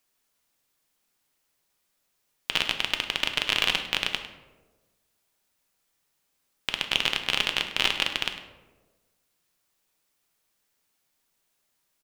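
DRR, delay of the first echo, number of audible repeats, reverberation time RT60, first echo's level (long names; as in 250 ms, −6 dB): 5.0 dB, 102 ms, 1, 1.3 s, −14.5 dB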